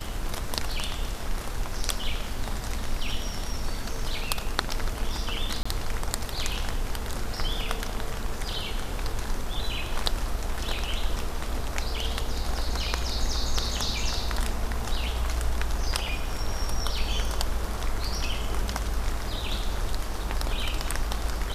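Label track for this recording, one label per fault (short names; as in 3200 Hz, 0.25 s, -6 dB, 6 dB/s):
5.630000	5.660000	gap 25 ms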